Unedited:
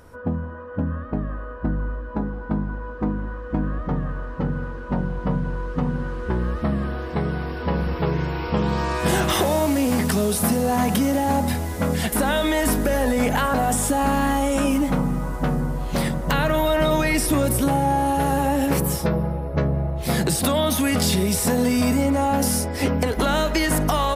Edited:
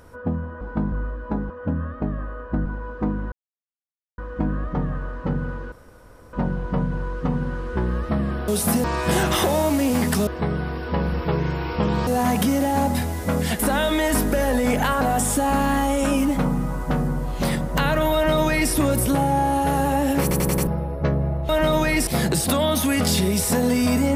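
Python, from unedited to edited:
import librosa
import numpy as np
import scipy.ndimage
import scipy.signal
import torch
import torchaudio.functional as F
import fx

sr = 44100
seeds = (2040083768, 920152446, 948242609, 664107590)

y = fx.edit(x, sr, fx.swap(start_s=0.61, length_s=1.16, other_s=2.35, other_length_s=0.31),
    fx.insert_silence(at_s=3.32, length_s=0.86),
    fx.insert_room_tone(at_s=4.86, length_s=0.61),
    fx.swap(start_s=7.01, length_s=1.8, other_s=10.24, other_length_s=0.36),
    fx.duplicate(start_s=16.67, length_s=0.58, to_s=20.02),
    fx.stutter_over(start_s=18.75, slice_s=0.09, count=5), tone=tone)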